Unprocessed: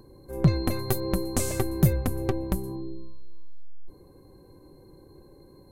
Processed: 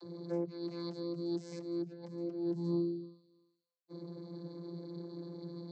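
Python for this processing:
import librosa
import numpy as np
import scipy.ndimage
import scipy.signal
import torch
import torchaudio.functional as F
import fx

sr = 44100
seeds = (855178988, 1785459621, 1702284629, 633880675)

y = fx.peak_eq(x, sr, hz=5000.0, db=14.5, octaves=0.74)
y = fx.over_compress(y, sr, threshold_db=-36.0, ratio=-1.0)
y = fx.vocoder(y, sr, bands=32, carrier='saw', carrier_hz=171.0)
y = fx.notch_cascade(y, sr, direction='rising', hz=1.8, at=(1.02, 3.02), fade=0.02)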